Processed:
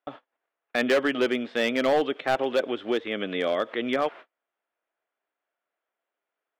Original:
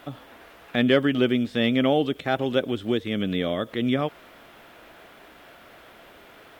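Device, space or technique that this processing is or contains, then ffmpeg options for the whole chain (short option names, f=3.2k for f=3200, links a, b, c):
walkie-talkie: -af "highpass=450,lowpass=2.6k,asoftclip=type=hard:threshold=-20.5dB,agate=range=-40dB:threshold=-44dB:ratio=16:detection=peak,volume=4dB"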